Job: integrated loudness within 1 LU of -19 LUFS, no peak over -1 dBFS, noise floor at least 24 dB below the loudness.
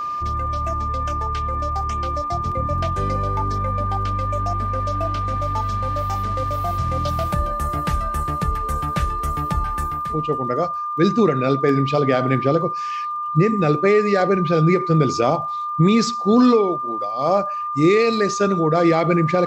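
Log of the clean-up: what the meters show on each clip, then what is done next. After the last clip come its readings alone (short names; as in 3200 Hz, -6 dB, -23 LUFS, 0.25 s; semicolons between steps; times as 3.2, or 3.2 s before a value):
ticks 53/s; steady tone 1200 Hz; tone level -23 dBFS; loudness -20.5 LUFS; peak -5.0 dBFS; loudness target -19.0 LUFS
-> de-click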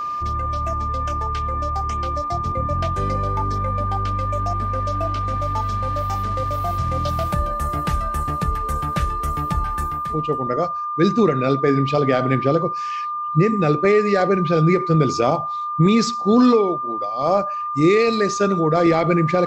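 ticks 0.15/s; steady tone 1200 Hz; tone level -23 dBFS
-> notch 1200 Hz, Q 30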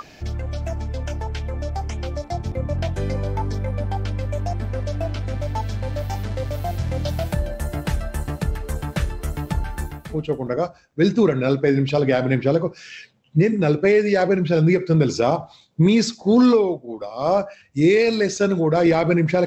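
steady tone none; loudness -21.5 LUFS; peak -6.0 dBFS; loudness target -19.0 LUFS
-> gain +2.5 dB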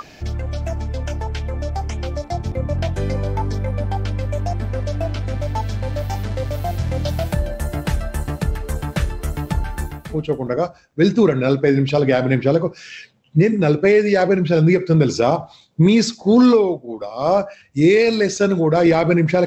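loudness -19.0 LUFS; peak -3.5 dBFS; noise floor -47 dBFS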